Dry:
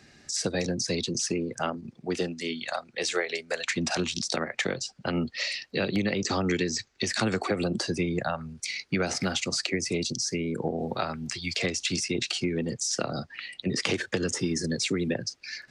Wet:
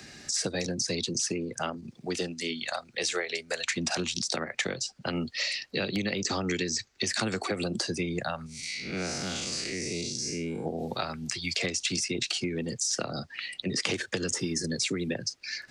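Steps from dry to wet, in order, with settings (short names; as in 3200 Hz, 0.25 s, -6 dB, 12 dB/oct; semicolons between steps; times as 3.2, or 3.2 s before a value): 8.46–10.66 time blur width 0.167 s; high shelf 3800 Hz +6.5 dB; three-band squash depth 40%; gain -3.5 dB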